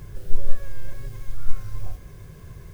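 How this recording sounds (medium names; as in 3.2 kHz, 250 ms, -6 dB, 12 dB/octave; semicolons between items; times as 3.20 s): noise floor -44 dBFS; spectral tilt -5.5 dB/octave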